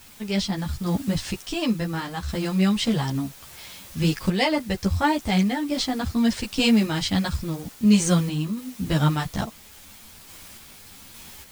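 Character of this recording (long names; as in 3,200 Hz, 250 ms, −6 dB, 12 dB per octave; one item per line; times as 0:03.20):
a quantiser's noise floor 8 bits, dither triangular
sample-and-hold tremolo
a shimmering, thickened sound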